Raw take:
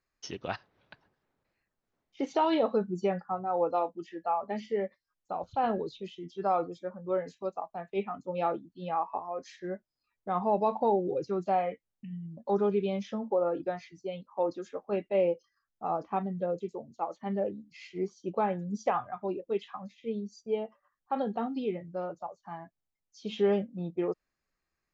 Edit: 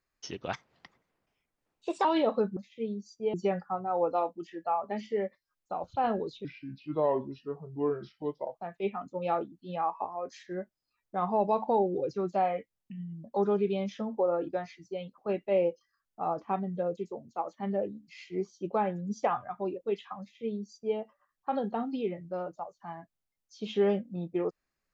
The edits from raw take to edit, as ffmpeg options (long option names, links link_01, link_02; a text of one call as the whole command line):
ffmpeg -i in.wav -filter_complex "[0:a]asplit=8[link_01][link_02][link_03][link_04][link_05][link_06][link_07][link_08];[link_01]atrim=end=0.534[link_09];[link_02]atrim=start=0.53:end=2.41,asetpts=PTS-STARTPTS,asetrate=54684,aresample=44100,atrim=end_sample=66861,asetpts=PTS-STARTPTS[link_10];[link_03]atrim=start=2.406:end=2.932[link_11];[link_04]atrim=start=19.828:end=20.602[link_12];[link_05]atrim=start=2.928:end=6.044[link_13];[link_06]atrim=start=6.04:end=7.68,asetpts=PTS-STARTPTS,asetrate=34398,aresample=44100,atrim=end_sample=92723,asetpts=PTS-STARTPTS[link_14];[link_07]atrim=start=7.676:end=14.312[link_15];[link_08]atrim=start=14.808[link_16];[link_09][link_10]acrossfade=duration=0.004:curve1=hsin:curve2=hsin[link_17];[link_17][link_11]acrossfade=duration=0.004:curve1=hsin:curve2=hsin[link_18];[link_18][link_12]acrossfade=duration=0.004:curve1=hsin:curve2=hsin[link_19];[link_19][link_13]acrossfade=duration=0.004:curve1=hsin:curve2=hsin[link_20];[link_20][link_14]acrossfade=duration=0.004:curve1=hsin:curve2=hsin[link_21];[link_21][link_15]acrossfade=duration=0.004:curve1=hsin:curve2=hsin[link_22];[link_22][link_16]acrossfade=duration=0.004:curve1=hsin:curve2=hsin" out.wav